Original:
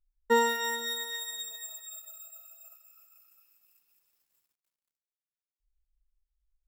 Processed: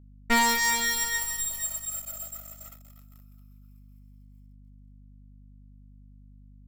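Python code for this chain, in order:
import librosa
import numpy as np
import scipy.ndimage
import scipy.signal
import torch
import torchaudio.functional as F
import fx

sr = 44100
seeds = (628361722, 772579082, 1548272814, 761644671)

y = fx.lower_of_two(x, sr, delay_ms=0.94)
y = fx.leveller(y, sr, passes=3)
y = fx.add_hum(y, sr, base_hz=50, snr_db=19)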